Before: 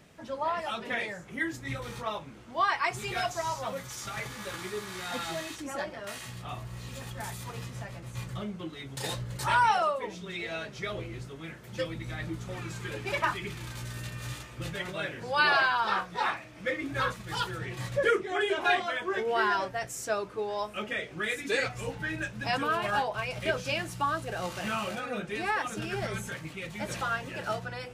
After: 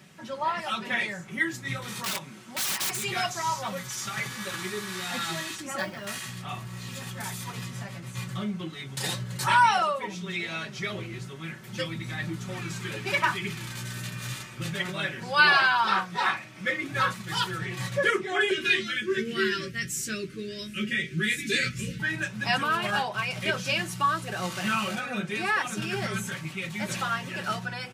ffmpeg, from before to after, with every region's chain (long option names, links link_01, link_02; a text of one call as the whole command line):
ffmpeg -i in.wav -filter_complex "[0:a]asettb=1/sr,asplit=3[link_01][link_02][link_03];[link_01]atrim=end=1.884[link_04];[link_02]atrim=start=1.88:end=3.04,asetpts=PTS-STARTPTS,afade=type=in:duration=0.004:curve=qsin,afade=type=out:start_time=1.156:duration=0.004:curve=qsin,highpass=130,equalizer=frequency=11000:width_type=o:width=1.8:gain=7,aeval=exprs='(mod(28.2*val(0)+1,2)-1)/28.2':channel_layout=same[link_05];[link_03]atrim=start=3.036[link_06];[link_04][link_05]acrossfade=duration=0.004:curve1=hsin:curve2=qsin[link_07];[link_07][link_06]acrossfade=duration=0.004:curve1=qsin:curve2=hsin,asettb=1/sr,asplit=3[link_08][link_09][link_10];[link_08]atrim=end=5.784[link_11];[link_09]atrim=start=5.78:end=6.2,asetpts=PTS-STARTPTS,afade=type=in:duration=0.004:curve=qsin,afade=type=out:start_time=0.416:duration=0.004:curve=qsin,bass=frequency=250:gain=4,treble=frequency=4000:gain=1,acrusher=bits=6:mode=log:mix=0:aa=0.000001[link_12];[link_10]atrim=start=6.196[link_13];[link_11][link_12]acrossfade=duration=0.004:curve1=hsin:curve2=qsin[link_14];[link_14][link_13]acrossfade=duration=0.004:curve1=qsin:curve2=hsin,asettb=1/sr,asplit=3[link_15][link_16][link_17];[link_15]atrim=end=18.514[link_18];[link_16]atrim=start=18.51:end=22,asetpts=PTS-STARTPTS,afade=type=in:duration=0.004:curve=qsin,afade=type=out:start_time=3.486:duration=0.004:curve=qsin,asuperstop=centerf=830:order=4:qfactor=0.6,lowshelf=frequency=210:gain=9,asplit=2[link_19][link_20];[link_20]adelay=13,volume=-5dB[link_21];[link_19][link_21]amix=inputs=2:normalize=0,atrim=end_sample=153909[link_22];[link_17]atrim=start=21.996[link_23];[link_18][link_22]acrossfade=duration=0.004:curve1=hsin:curve2=qsin[link_24];[link_24][link_23]acrossfade=duration=0.004:curve1=qsin:curve2=hsin,highpass=frequency=92:width=0.5412,highpass=frequency=92:width=1.3066,equalizer=frequency=520:width_type=o:width=1.5:gain=-7.5,aecho=1:1:5.3:0.48,volume=5dB" out.wav